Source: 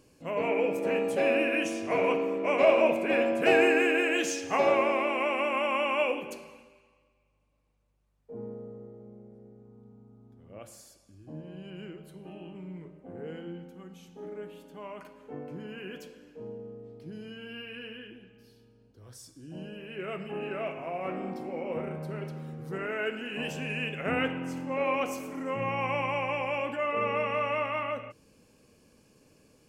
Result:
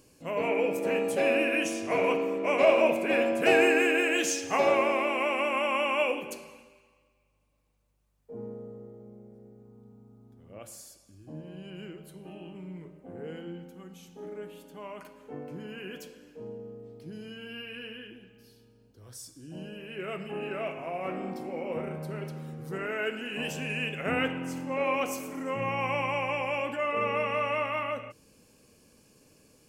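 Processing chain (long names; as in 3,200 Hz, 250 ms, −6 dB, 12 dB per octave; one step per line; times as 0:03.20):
high-shelf EQ 5,300 Hz +7.5 dB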